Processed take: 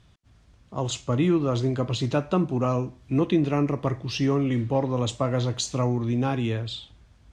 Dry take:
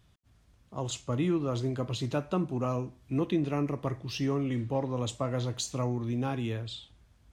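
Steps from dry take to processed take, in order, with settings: low-pass 7.7 kHz 12 dB/octave; trim +6.5 dB

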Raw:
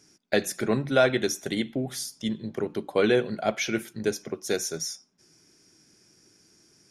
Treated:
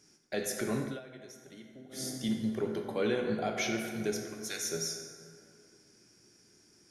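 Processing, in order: 4.14–4.67 s: Bessel high-pass 1.5 kHz, order 2; peak limiter -19 dBFS, peak gain reduction 10 dB; plate-style reverb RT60 2.4 s, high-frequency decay 0.5×, DRR 2 dB; 0.82–2.08 s: dip -18 dB, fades 0.19 s; trim -4.5 dB

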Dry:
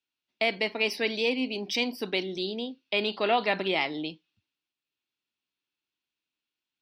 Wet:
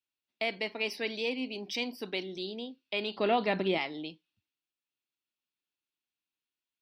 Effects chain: 3.16–3.78 s: bass shelf 430 Hz +11 dB; trim -6 dB

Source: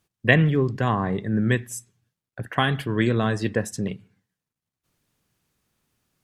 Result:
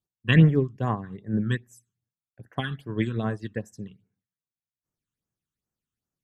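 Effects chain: phase shifter stages 8, 2.5 Hz, lowest notch 600–4100 Hz; upward expansion 2.5:1, over -29 dBFS; trim +4 dB

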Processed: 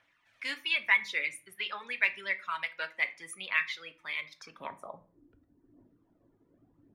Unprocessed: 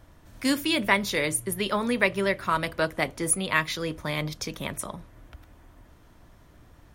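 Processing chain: band-pass sweep 2.3 kHz -> 310 Hz, 4.29–5.22 s; phaser 0.86 Hz, delay 2.5 ms, feedback 31%; reverb removal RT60 1.2 s; on a send: reverberation RT60 0.40 s, pre-delay 4 ms, DRR 9 dB

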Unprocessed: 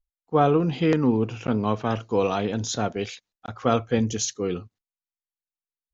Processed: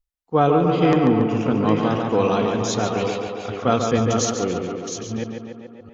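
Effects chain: chunks repeated in reverse 655 ms, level -7 dB; tape echo 142 ms, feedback 75%, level -4 dB, low-pass 3.6 kHz; trim +2 dB

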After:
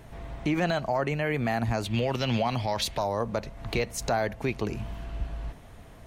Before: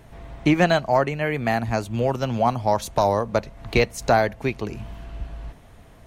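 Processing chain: 1.84–2.98 s: high-order bell 3 kHz +10 dB; peak limiter -17.5 dBFS, peak gain reduction 10 dB

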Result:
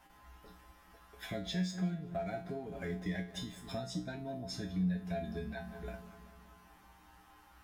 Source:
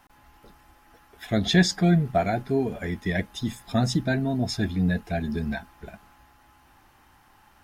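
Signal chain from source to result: filtered feedback delay 191 ms, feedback 61%, low-pass 2.8 kHz, level -17 dB; compression 8:1, threshold -32 dBFS, peak gain reduction 18 dB; 1.28–3.75 s: hysteresis with a dead band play -52 dBFS; feedback comb 61 Hz, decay 0.35 s, harmonics odd, mix 90%; trim +6 dB

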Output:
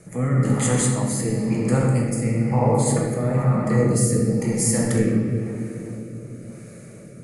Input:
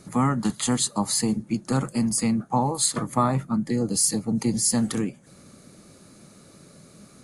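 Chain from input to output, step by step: peak limiter -16.5 dBFS, peak gain reduction 7.5 dB; 2.14–2.86 s: treble shelf 5.5 kHz -11 dB; simulated room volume 160 m³, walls hard, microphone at 0.67 m; rotary cabinet horn 1 Hz; graphic EQ 125/250/500/1000/2000/4000/8000 Hz +7/-5/+9/-5/+9/-11/+6 dB

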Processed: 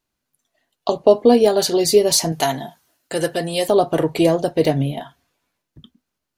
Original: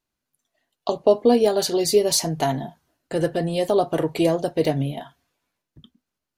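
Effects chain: 2.32–3.68 s: tilt EQ +2.5 dB/octave; trim +4 dB

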